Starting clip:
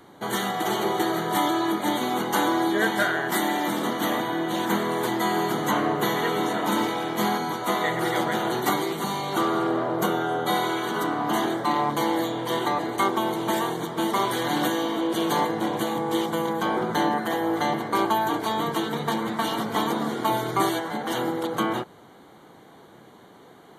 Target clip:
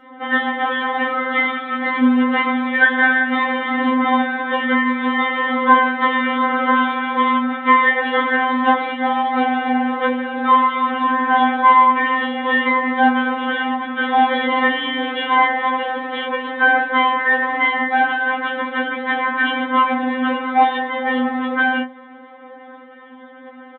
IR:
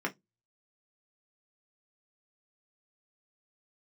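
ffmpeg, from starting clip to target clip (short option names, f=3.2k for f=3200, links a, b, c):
-filter_complex "[0:a]aresample=8000,acrusher=bits=5:mode=log:mix=0:aa=0.000001,aresample=44100[a];[1:a]atrim=start_sample=2205[b];[a][b]afir=irnorm=-1:irlink=0,afftfilt=real='re*3.46*eq(mod(b,12),0)':imag='im*3.46*eq(mod(b,12),0)':win_size=2048:overlap=0.75,volume=5dB"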